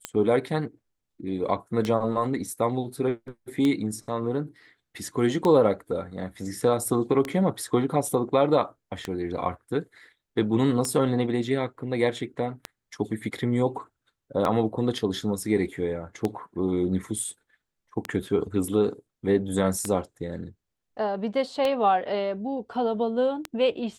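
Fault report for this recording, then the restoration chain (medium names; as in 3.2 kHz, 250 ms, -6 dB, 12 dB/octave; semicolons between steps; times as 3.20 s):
tick 33 1/3 rpm -13 dBFS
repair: de-click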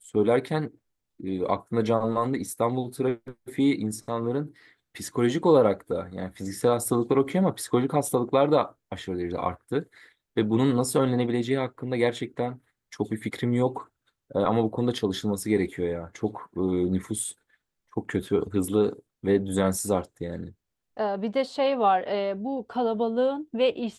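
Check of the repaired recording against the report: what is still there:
nothing left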